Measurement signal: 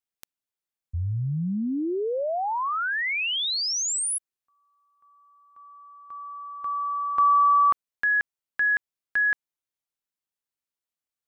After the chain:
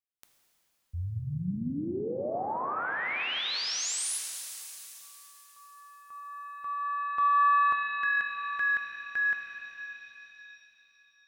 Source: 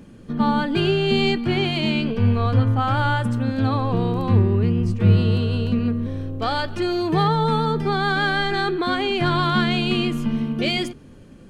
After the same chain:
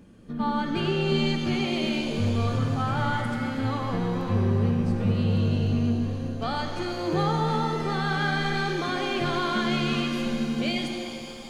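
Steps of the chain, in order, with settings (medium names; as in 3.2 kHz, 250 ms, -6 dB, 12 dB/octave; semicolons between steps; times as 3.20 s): saturation -5 dBFS; pitch-shifted reverb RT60 3.3 s, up +7 st, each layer -8 dB, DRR 2.5 dB; trim -7.5 dB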